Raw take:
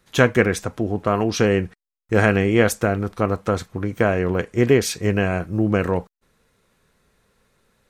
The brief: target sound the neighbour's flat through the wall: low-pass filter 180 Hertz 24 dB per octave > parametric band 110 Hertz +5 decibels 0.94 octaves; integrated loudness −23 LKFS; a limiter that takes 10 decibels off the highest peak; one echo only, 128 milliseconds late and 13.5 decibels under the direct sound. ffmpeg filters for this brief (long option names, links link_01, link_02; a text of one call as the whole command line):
ffmpeg -i in.wav -af "alimiter=limit=-11.5dB:level=0:latency=1,lowpass=frequency=180:width=0.5412,lowpass=frequency=180:width=1.3066,equalizer=frequency=110:width_type=o:width=0.94:gain=5,aecho=1:1:128:0.211,volume=3.5dB" out.wav